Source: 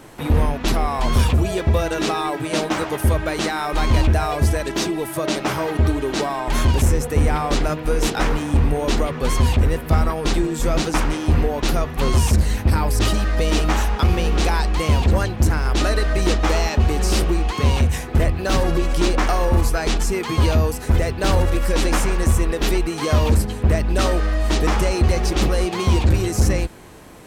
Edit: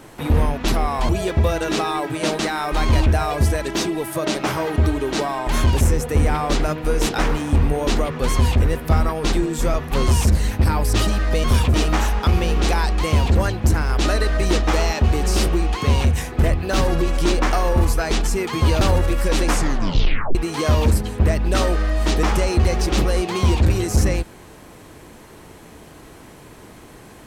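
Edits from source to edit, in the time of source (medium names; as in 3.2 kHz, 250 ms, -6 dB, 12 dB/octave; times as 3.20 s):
1.09–1.39 s: move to 13.50 s
2.69–3.40 s: delete
10.75–11.80 s: delete
20.57–21.25 s: delete
21.93 s: tape stop 0.86 s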